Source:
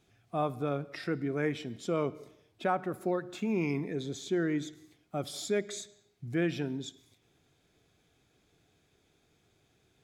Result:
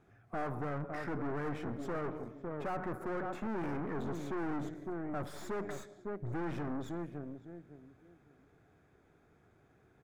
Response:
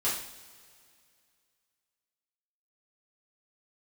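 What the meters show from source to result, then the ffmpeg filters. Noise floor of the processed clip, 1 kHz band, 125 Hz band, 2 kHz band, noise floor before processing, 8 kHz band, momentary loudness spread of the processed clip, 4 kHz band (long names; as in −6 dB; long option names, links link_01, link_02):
−67 dBFS, −3.0 dB, −3.5 dB, −5.0 dB, −71 dBFS, −13.5 dB, 7 LU, −14.0 dB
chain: -filter_complex "[0:a]asplit=2[link_01][link_02];[link_02]adelay=556,lowpass=frequency=990:poles=1,volume=-12dB,asplit=2[link_03][link_04];[link_04]adelay=556,lowpass=frequency=990:poles=1,volume=0.26,asplit=2[link_05][link_06];[link_06]adelay=556,lowpass=frequency=990:poles=1,volume=0.26[link_07];[link_01][link_03][link_05][link_07]amix=inputs=4:normalize=0,aeval=exprs='(tanh(141*val(0)+0.65)-tanh(0.65))/141':channel_layout=same,highshelf=frequency=2300:width_type=q:width=1.5:gain=-13.5,volume=7dB"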